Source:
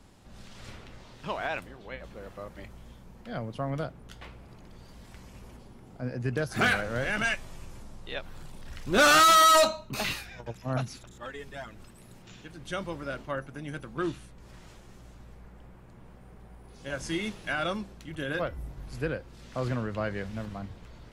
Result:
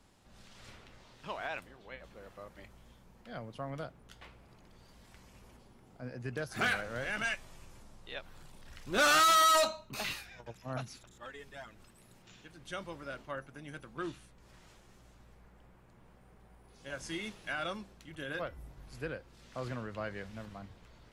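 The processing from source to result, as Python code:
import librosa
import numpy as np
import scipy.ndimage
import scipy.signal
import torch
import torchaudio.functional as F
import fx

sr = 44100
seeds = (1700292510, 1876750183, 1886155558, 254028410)

y = fx.low_shelf(x, sr, hz=470.0, db=-5.0)
y = y * 10.0 ** (-5.5 / 20.0)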